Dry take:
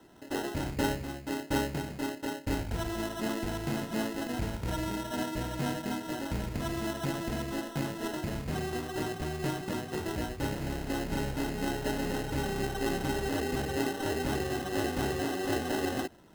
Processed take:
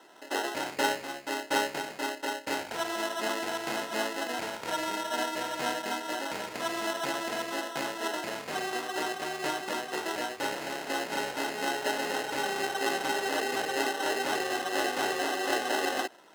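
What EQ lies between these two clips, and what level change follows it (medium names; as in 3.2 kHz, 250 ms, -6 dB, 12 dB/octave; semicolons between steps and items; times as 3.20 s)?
high-pass 570 Hz 12 dB/octave; treble shelf 12 kHz -10 dB; +7.0 dB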